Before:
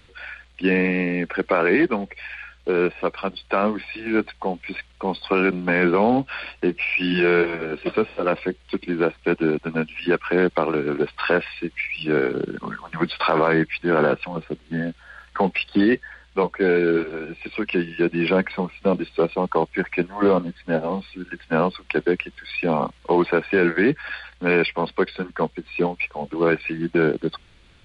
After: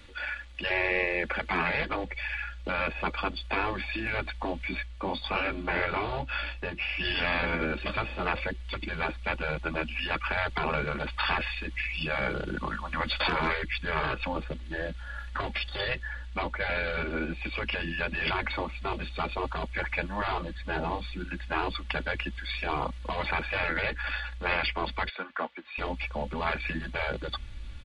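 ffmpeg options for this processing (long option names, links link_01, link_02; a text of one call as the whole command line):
ffmpeg -i in.wav -filter_complex "[0:a]asettb=1/sr,asplit=3[link_01][link_02][link_03];[link_01]atrim=end=4.684[link_04];[link_02]atrim=start=4.68:end=7.05,asetpts=PTS-STARTPTS,afade=type=in:duration=0.004:curve=qsin,afade=type=out:start_time=2.366:duration=0.004:curve=qsin,flanger=delay=15.5:depth=7.4:speed=1.2[link_05];[link_03]atrim=start=7.046[link_06];[link_04][link_05]acrossfade=duration=0.004:curve1=hsin:curve2=qsin[link_07];[link_07][link_06]acrossfade=duration=0.004:curve1=qsin:curve2=hsin,asettb=1/sr,asplit=3[link_08][link_09][link_10];[link_08]atrim=end=13.334[link_11];[link_09]atrim=start=13.33:end=14.15,asetpts=PTS-STARTPTS,afade=type=in:duration=0.004:curve=qsin,afade=type=out:start_time=0.816:duration=0.004:curve=qsin,equalizer=frequency=710:width=2.3:gain=-11[link_12];[link_10]atrim=start=14.146[link_13];[link_11][link_12]acrossfade=duration=0.004:curve1=hsin:curve2=qsin[link_14];[link_14][link_13]acrossfade=duration=0.004:curve1=qsin:curve2=hsin,asettb=1/sr,asplit=3[link_15][link_16][link_17];[link_15]atrim=end=25.094[link_18];[link_16]atrim=start=25.09:end=25.78,asetpts=PTS-STARTPTS,afade=type=in:duration=0.004:curve=qsin,afade=type=out:start_time=0.686:duration=0.004:curve=qsin,highpass=680,lowpass=2800[link_19];[link_17]atrim=start=25.776[link_20];[link_18][link_19]acrossfade=duration=0.004:curve1=hsin:curve2=qsin[link_21];[link_21][link_20]acrossfade=duration=0.004:curve1=qsin:curve2=hsin,asubboost=boost=4.5:cutoff=150,aecho=1:1:3.5:0.59,afftfilt=real='re*lt(hypot(re,im),0.251)':imag='im*lt(hypot(re,im),0.251)':win_size=1024:overlap=0.75" out.wav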